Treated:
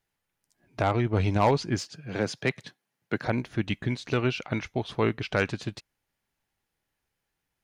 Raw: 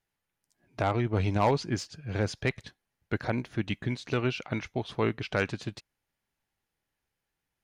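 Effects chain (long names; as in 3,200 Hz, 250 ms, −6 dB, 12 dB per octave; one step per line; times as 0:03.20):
0:01.82–0:03.26: high-pass filter 130 Hz 24 dB per octave
level +2.5 dB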